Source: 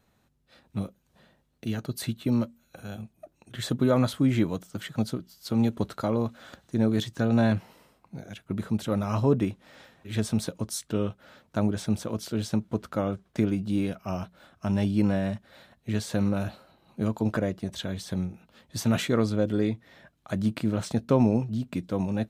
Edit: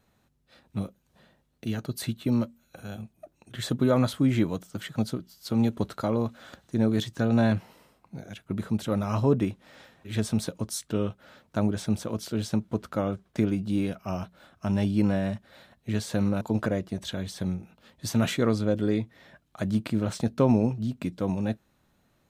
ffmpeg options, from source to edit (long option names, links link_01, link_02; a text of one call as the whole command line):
ffmpeg -i in.wav -filter_complex "[0:a]asplit=2[link_01][link_02];[link_01]atrim=end=16.412[link_03];[link_02]atrim=start=17.118[link_04];[link_03][link_04]acrossfade=duration=0.004:curve1=hsin:curve2=hsin" out.wav